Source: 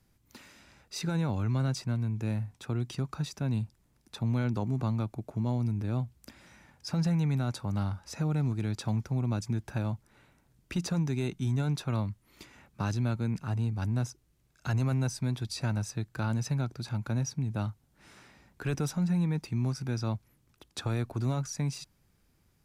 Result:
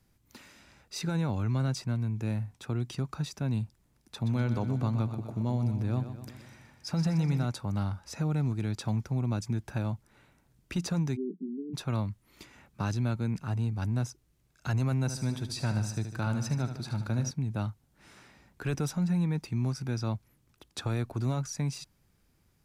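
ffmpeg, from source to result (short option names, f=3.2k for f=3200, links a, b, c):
-filter_complex "[0:a]asplit=3[a][b][c];[a]afade=t=out:st=4.19:d=0.02[d];[b]aecho=1:1:124|248|372|496|620|744|868:0.316|0.18|0.103|0.0586|0.0334|0.019|0.0108,afade=t=in:st=4.19:d=0.02,afade=t=out:st=7.45:d=0.02[e];[c]afade=t=in:st=7.45:d=0.02[f];[d][e][f]amix=inputs=3:normalize=0,asplit=3[g][h][i];[g]afade=t=out:st=11.15:d=0.02[j];[h]asuperpass=centerf=280:order=20:qfactor=1.1,afade=t=in:st=11.15:d=0.02,afade=t=out:st=11.73:d=0.02[k];[i]afade=t=in:st=11.73:d=0.02[l];[j][k][l]amix=inputs=3:normalize=0,asettb=1/sr,asplit=3[m][n][o];[m]atrim=end=15.004[p];[n]atrim=start=15:end=17.31,asetpts=PTS-STARTPTS,afade=t=in:d=0.004:c=qsin,afade=t=out:st=2.306:d=0.004:c=qsin,aecho=1:1:75|150|225|300|375|450|525:0.335|0.191|0.109|0.062|0.0354|0.0202|0.0115,atrim=end_sample=101871[q];[o]atrim=start=17.306[r];[p][q]acrossfade=d=0.004:c1=hsin:c2=qsin[s];[s][r]acrossfade=d=0.004:c1=qsin:c2=hsin"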